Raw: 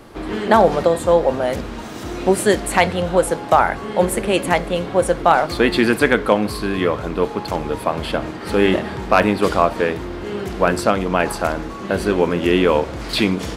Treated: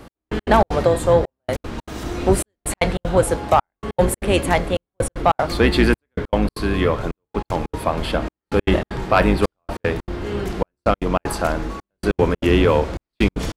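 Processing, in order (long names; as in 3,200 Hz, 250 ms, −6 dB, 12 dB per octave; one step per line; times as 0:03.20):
sub-octave generator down 2 octaves, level 0 dB
gate pattern "x...x.xx.xxxxxx" 192 BPM −60 dB
soft clipping −3.5 dBFS, distortion −20 dB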